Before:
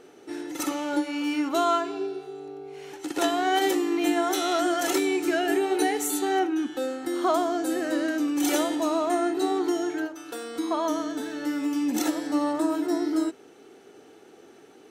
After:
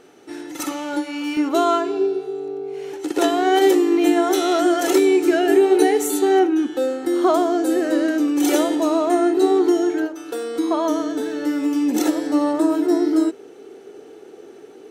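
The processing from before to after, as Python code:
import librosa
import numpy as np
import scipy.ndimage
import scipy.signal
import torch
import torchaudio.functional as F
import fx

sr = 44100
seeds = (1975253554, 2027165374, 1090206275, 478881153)

y = fx.peak_eq(x, sr, hz=420.0, db=fx.steps((0.0, -2.5), (1.37, 9.0)), octaves=0.85)
y = F.gain(torch.from_numpy(y), 3.0).numpy()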